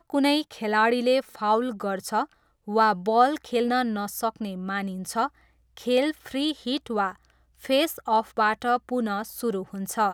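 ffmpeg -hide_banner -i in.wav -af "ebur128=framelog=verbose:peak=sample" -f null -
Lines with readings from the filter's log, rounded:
Integrated loudness:
  I:         -25.5 LUFS
  Threshold: -35.8 LUFS
Loudness range:
  LRA:         4.2 LU
  Threshold: -46.0 LUFS
  LRA low:   -28.4 LUFS
  LRA high:  -24.2 LUFS
Sample peak:
  Peak:       -7.0 dBFS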